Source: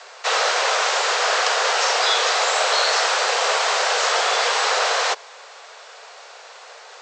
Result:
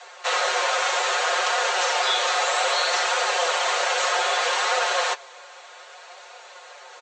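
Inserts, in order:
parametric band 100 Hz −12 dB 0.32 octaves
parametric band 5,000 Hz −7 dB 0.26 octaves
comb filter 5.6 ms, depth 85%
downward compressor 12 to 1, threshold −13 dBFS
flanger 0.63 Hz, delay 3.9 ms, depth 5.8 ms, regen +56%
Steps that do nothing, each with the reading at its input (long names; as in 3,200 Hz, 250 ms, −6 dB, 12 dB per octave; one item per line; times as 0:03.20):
parametric band 100 Hz: nothing at its input below 340 Hz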